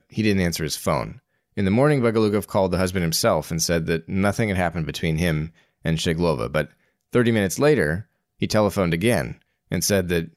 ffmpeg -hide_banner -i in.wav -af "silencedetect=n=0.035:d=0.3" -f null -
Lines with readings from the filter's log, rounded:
silence_start: 1.12
silence_end: 1.57 | silence_duration: 0.46
silence_start: 5.47
silence_end: 5.85 | silence_duration: 0.38
silence_start: 6.64
silence_end: 7.13 | silence_duration: 0.49
silence_start: 8.01
silence_end: 8.42 | silence_duration: 0.41
silence_start: 9.32
silence_end: 9.72 | silence_duration: 0.39